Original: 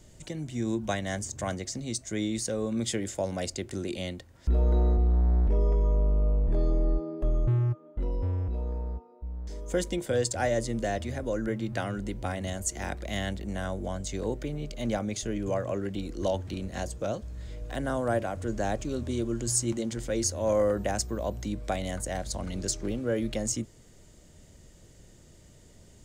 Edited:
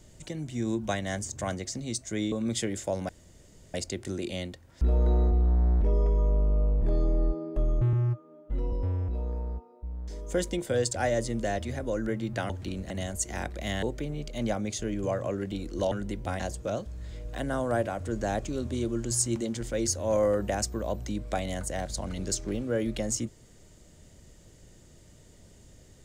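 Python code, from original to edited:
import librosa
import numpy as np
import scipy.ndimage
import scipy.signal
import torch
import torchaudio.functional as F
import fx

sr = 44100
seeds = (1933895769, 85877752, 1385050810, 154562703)

y = fx.edit(x, sr, fx.cut(start_s=2.32, length_s=0.31),
    fx.insert_room_tone(at_s=3.4, length_s=0.65),
    fx.stretch_span(start_s=7.59, length_s=0.53, factor=1.5),
    fx.swap(start_s=11.89, length_s=0.48, other_s=16.35, other_length_s=0.41),
    fx.cut(start_s=13.29, length_s=0.97), tone=tone)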